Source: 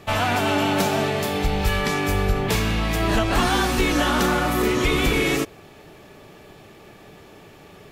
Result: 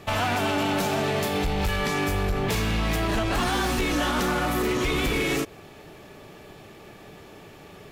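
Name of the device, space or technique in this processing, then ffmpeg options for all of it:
limiter into clipper: -af "alimiter=limit=-15dB:level=0:latency=1:release=106,asoftclip=type=hard:threshold=-20dB"

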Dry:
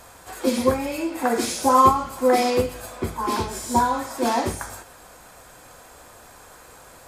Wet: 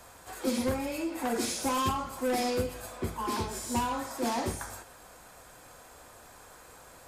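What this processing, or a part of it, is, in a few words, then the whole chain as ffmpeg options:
one-band saturation: -filter_complex "[0:a]acrossover=split=270|4000[link_01][link_02][link_03];[link_02]asoftclip=type=tanh:threshold=-23dB[link_04];[link_01][link_04][link_03]amix=inputs=3:normalize=0,volume=-5.5dB"

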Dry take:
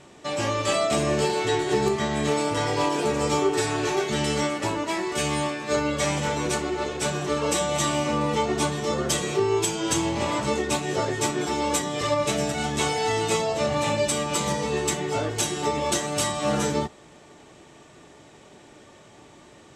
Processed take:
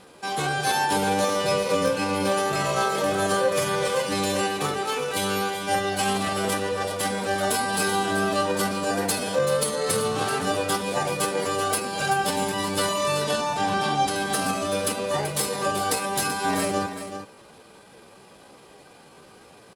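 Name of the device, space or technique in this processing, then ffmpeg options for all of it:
chipmunk voice: -filter_complex "[0:a]asettb=1/sr,asplit=3[link_01][link_02][link_03];[link_01]atrim=end=13.224[link_04];[link_02]atrim=start=13.22:end=14.17,asetpts=PTS-STARTPTS,afade=type=in:duration=0.004:curve=qsin,afade=type=out:start_time=0.946:duration=0.004:curve=qsin,lowpass=5300[link_05];[link_03]atrim=start=14.166[link_06];[link_04][link_05]acrossfade=duration=0.004:curve1=hsin:curve2=qsin[link_07];[link_07][link_06]acrossfade=duration=0.004:curve1=qsin:curve2=hsin,asetrate=58866,aresample=44100,atempo=0.749154,aecho=1:1:383:0.316"

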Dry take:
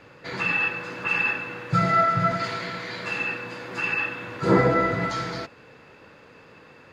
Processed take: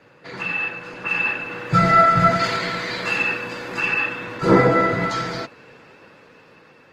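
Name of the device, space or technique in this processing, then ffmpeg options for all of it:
video call: -filter_complex "[0:a]asettb=1/sr,asplit=3[link_01][link_02][link_03];[link_01]atrim=end=2.154[link_04];[link_02]atrim=start=2.15:end=3.75,asetpts=PTS-STARTPTS,afade=type=in:duration=0.004:curve=qsin,afade=type=out:start_time=1.596:duration=0.004:curve=qsin,highshelf=frequency=4500:gain=3[link_05];[link_03]atrim=start=3.746[link_06];[link_04][link_05]acrossfade=duration=0.004:curve1=hsin:curve2=qsin[link_07];[link_07][link_06]acrossfade=duration=0.004:curve1=qsin:curve2=hsin,highpass=110,dynaudnorm=framelen=420:gausssize=7:maxgain=15.5dB,volume=-1dB" -ar 48000 -c:a libopus -b:a 20k

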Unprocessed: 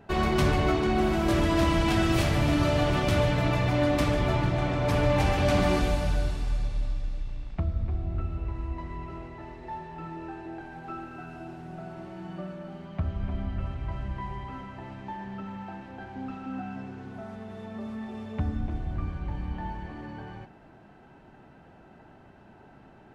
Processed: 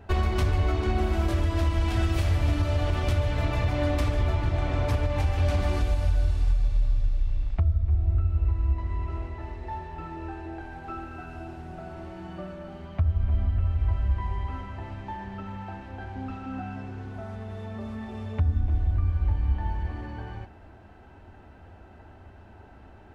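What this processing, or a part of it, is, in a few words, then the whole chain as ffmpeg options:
car stereo with a boomy subwoofer: -af "lowshelf=frequency=110:width_type=q:width=3:gain=7.5,alimiter=limit=-17dB:level=0:latency=1:release=440,volume=1.5dB"

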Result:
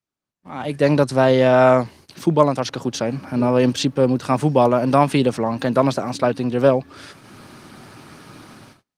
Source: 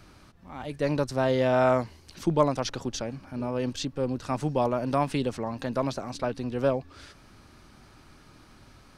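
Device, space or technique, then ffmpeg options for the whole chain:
video call: -af "highpass=frequency=110:width=0.5412,highpass=frequency=110:width=1.3066,dynaudnorm=framelen=170:gausssize=5:maxgain=15.5dB,agate=range=-34dB:threshold=-42dB:ratio=16:detection=peak,volume=-1dB" -ar 48000 -c:a libopus -b:a 32k

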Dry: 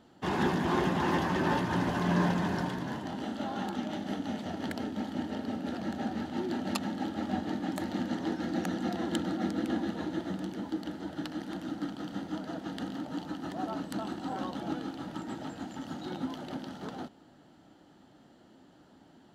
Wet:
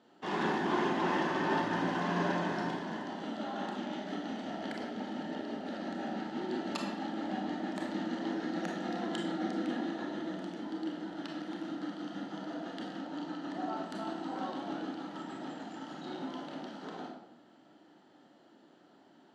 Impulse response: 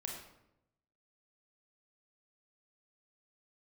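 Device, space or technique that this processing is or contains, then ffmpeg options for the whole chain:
supermarket ceiling speaker: -filter_complex "[0:a]highpass=250,lowpass=6400[link_01];[1:a]atrim=start_sample=2205[link_02];[link_01][link_02]afir=irnorm=-1:irlink=0,asettb=1/sr,asplit=3[link_03][link_04][link_05];[link_03]atrim=end=13.004[link_06];[link_04]atrim=start=13:end=13.75,asetpts=PTS-STARTPTS,afade=type=in:duration=0.004:curve=qsin,afade=type=out:start_time=0.746:duration=0.004:curve=qsin,lowpass=9200[link_07];[link_05]atrim=start=13.746[link_08];[link_06][link_07]acrossfade=duration=0.004:curve1=hsin:curve2=qsin[link_09];[link_09][link_08]acrossfade=duration=0.004:curve1=qsin:curve2=hsin"

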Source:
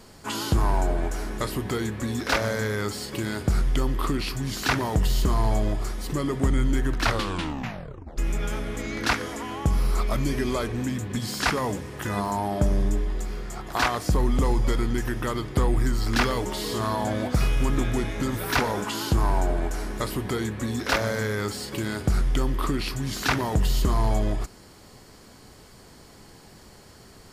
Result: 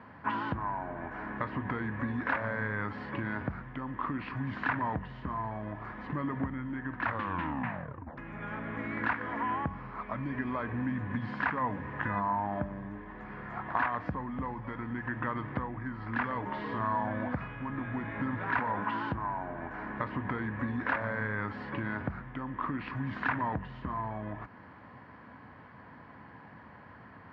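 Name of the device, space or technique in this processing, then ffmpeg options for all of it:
bass amplifier: -af "acompressor=threshold=-29dB:ratio=5,highpass=frequency=78:width=0.5412,highpass=frequency=78:width=1.3066,equalizer=frequency=260:width_type=q:width=4:gain=4,equalizer=frequency=390:width_type=q:width=4:gain=-10,equalizer=frequency=1000:width_type=q:width=4:gain=9,equalizer=frequency=1700:width_type=q:width=4:gain=8,lowpass=frequency=2300:width=0.5412,lowpass=frequency=2300:width=1.3066,volume=-2dB"

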